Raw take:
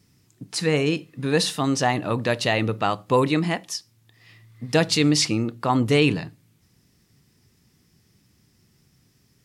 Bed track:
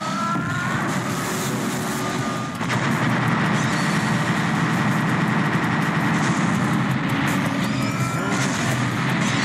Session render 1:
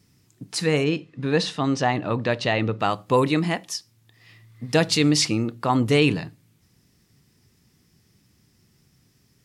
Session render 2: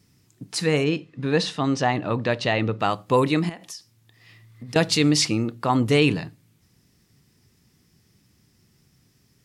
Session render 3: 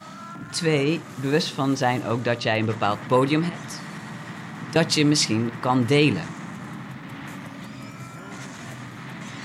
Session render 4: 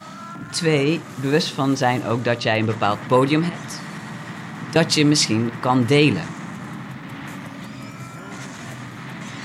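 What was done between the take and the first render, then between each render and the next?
0.84–2.80 s: distance through air 99 m
3.49–4.76 s: compression 10:1, threshold -33 dBFS
add bed track -15.5 dB
trim +3 dB

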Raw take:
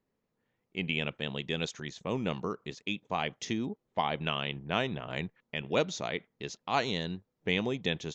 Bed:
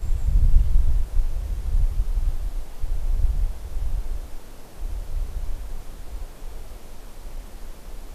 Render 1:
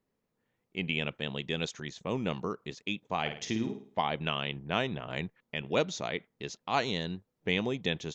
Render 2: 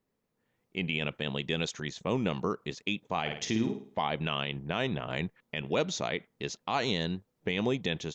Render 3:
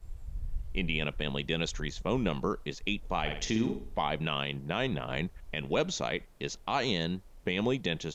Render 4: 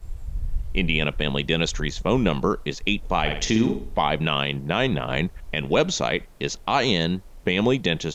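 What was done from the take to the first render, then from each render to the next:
3.20–4.02 s: flutter echo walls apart 9.2 m, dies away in 0.44 s
peak limiter -21.5 dBFS, peak gain reduction 8 dB; level rider gain up to 3.5 dB
add bed -19.5 dB
trim +9 dB

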